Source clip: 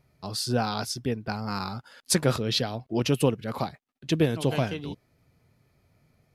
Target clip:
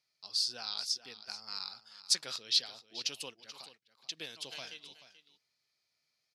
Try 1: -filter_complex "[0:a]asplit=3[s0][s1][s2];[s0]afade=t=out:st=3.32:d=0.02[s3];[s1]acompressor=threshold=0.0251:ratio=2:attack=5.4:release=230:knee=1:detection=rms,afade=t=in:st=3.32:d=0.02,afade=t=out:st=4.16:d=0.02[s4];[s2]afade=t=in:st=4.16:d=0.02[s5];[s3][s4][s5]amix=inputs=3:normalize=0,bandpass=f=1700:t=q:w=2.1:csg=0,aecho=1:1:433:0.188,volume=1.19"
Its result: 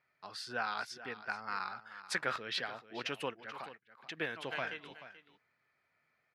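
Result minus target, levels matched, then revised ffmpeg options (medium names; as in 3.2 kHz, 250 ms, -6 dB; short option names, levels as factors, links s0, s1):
2 kHz band +15.5 dB
-filter_complex "[0:a]asplit=3[s0][s1][s2];[s0]afade=t=out:st=3.32:d=0.02[s3];[s1]acompressor=threshold=0.0251:ratio=2:attack=5.4:release=230:knee=1:detection=rms,afade=t=in:st=3.32:d=0.02,afade=t=out:st=4.16:d=0.02[s4];[s2]afade=t=in:st=4.16:d=0.02[s5];[s3][s4][s5]amix=inputs=3:normalize=0,bandpass=f=4800:t=q:w=2.1:csg=0,aecho=1:1:433:0.188,volume=1.19"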